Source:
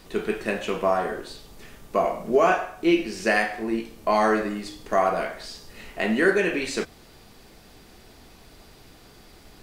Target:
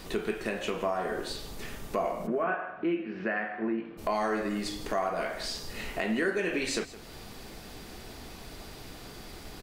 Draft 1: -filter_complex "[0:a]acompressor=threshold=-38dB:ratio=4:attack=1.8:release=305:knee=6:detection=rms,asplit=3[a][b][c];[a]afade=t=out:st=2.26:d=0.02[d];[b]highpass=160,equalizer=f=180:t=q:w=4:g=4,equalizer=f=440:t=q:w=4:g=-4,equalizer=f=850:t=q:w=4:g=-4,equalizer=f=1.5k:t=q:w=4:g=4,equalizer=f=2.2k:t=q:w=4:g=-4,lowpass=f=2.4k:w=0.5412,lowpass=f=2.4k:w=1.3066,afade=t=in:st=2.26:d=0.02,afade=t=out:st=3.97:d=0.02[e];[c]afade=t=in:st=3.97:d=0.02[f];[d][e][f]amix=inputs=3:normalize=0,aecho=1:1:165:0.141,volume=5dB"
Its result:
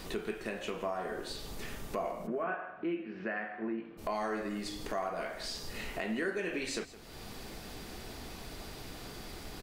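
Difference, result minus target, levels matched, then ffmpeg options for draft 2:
compressor: peak gain reduction +5.5 dB
-filter_complex "[0:a]acompressor=threshold=-30.5dB:ratio=4:attack=1.8:release=305:knee=6:detection=rms,asplit=3[a][b][c];[a]afade=t=out:st=2.26:d=0.02[d];[b]highpass=160,equalizer=f=180:t=q:w=4:g=4,equalizer=f=440:t=q:w=4:g=-4,equalizer=f=850:t=q:w=4:g=-4,equalizer=f=1.5k:t=q:w=4:g=4,equalizer=f=2.2k:t=q:w=4:g=-4,lowpass=f=2.4k:w=0.5412,lowpass=f=2.4k:w=1.3066,afade=t=in:st=2.26:d=0.02,afade=t=out:st=3.97:d=0.02[e];[c]afade=t=in:st=3.97:d=0.02[f];[d][e][f]amix=inputs=3:normalize=0,aecho=1:1:165:0.141,volume=5dB"

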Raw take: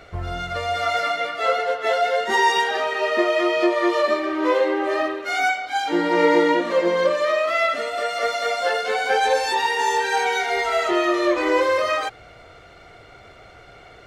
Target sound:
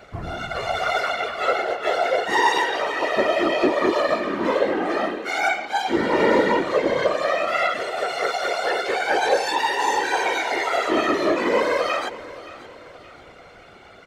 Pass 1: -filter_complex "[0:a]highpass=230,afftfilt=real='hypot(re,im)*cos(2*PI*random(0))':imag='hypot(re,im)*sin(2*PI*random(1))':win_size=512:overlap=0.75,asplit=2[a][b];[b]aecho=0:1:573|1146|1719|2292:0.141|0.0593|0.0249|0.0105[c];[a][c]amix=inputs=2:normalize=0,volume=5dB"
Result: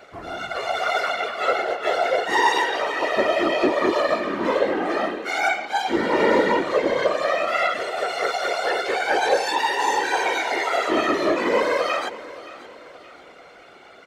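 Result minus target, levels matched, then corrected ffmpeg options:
125 Hz band -4.0 dB
-filter_complex "[0:a]highpass=70,afftfilt=real='hypot(re,im)*cos(2*PI*random(0))':imag='hypot(re,im)*sin(2*PI*random(1))':win_size=512:overlap=0.75,asplit=2[a][b];[b]aecho=0:1:573|1146|1719|2292:0.141|0.0593|0.0249|0.0105[c];[a][c]amix=inputs=2:normalize=0,volume=5dB"

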